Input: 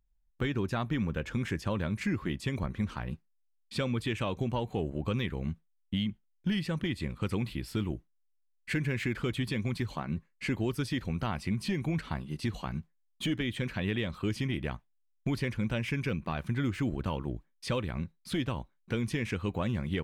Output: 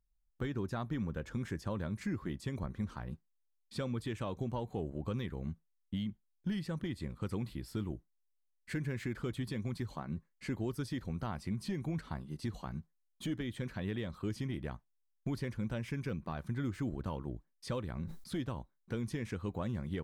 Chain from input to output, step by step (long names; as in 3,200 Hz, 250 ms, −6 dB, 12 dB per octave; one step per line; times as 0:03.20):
parametric band 2,600 Hz −9 dB 0.83 octaves
0:17.86–0:18.38: level that may fall only so fast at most 60 dB per second
level −5.5 dB